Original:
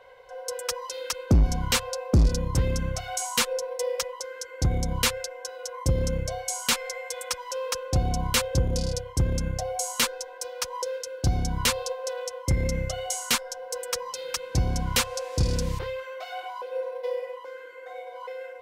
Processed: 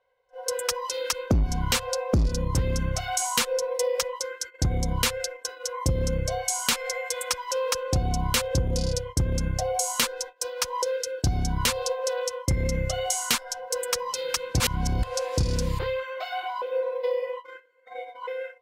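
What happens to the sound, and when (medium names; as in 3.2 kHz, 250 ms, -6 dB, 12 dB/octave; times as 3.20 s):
14.60–15.03 s: reverse
whole clip: gate -39 dBFS, range -16 dB; spectral noise reduction 10 dB; compression 3:1, threshold -27 dBFS; trim +5 dB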